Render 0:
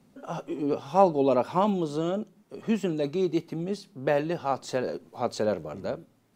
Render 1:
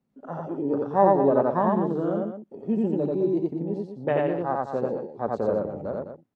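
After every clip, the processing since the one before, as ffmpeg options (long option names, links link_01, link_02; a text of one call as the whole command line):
ffmpeg -i in.wav -filter_complex "[0:a]afwtdn=0.02,highshelf=frequency=3800:gain=-10,asplit=2[link_01][link_02];[link_02]aecho=0:1:87.46|207:0.891|0.355[link_03];[link_01][link_03]amix=inputs=2:normalize=0" out.wav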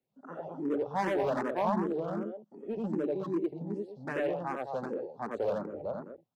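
ffmpeg -i in.wav -filter_complex "[0:a]acrossover=split=210|1100[link_01][link_02][link_03];[link_02]asoftclip=type=hard:threshold=-22.5dB[link_04];[link_01][link_04][link_03]amix=inputs=3:normalize=0,lowshelf=frequency=150:gain=-9,asplit=2[link_05][link_06];[link_06]afreqshift=2.6[link_07];[link_05][link_07]amix=inputs=2:normalize=1,volume=-2dB" out.wav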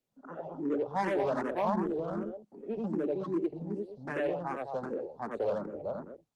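ffmpeg -i in.wav -filter_complex "[0:a]acrossover=split=120|350|2900[link_01][link_02][link_03][link_04];[link_01]alimiter=level_in=26.5dB:limit=-24dB:level=0:latency=1:release=191,volume=-26.5dB[link_05];[link_05][link_02][link_03][link_04]amix=inputs=4:normalize=0" -ar 48000 -c:a libopus -b:a 20k out.opus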